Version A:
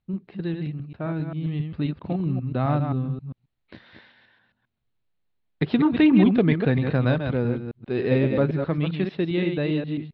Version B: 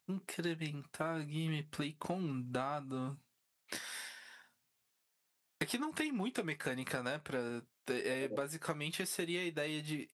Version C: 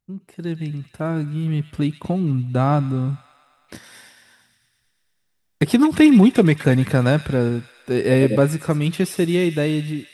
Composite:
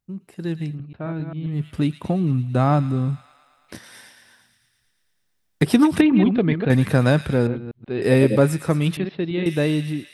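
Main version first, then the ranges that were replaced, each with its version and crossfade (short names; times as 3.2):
C
0.71–1.57 from A, crossfade 0.16 s
6.01–6.7 from A
7.47–8.02 from A
8.97–9.46 from A
not used: B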